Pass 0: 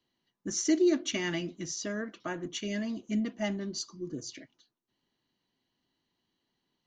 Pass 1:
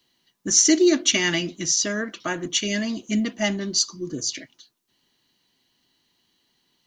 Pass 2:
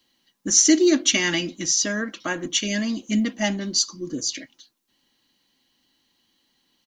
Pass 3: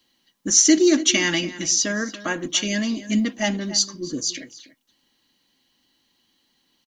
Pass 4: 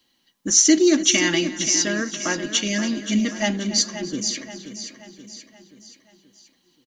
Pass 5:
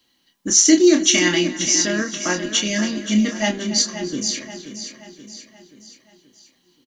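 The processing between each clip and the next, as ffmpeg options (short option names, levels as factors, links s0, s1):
-af "highshelf=f=2100:g=10.5,volume=2.24"
-af "aecho=1:1:3.7:0.38"
-filter_complex "[0:a]asplit=2[s0][s1];[s1]adelay=285.7,volume=0.178,highshelf=f=4000:g=-6.43[s2];[s0][s2]amix=inputs=2:normalize=0,volume=1.12"
-af "aecho=1:1:529|1058|1587|2116|2645:0.282|0.141|0.0705|0.0352|0.0176"
-filter_complex "[0:a]asplit=2[s0][s1];[s1]adelay=28,volume=0.501[s2];[s0][s2]amix=inputs=2:normalize=0,volume=1.12"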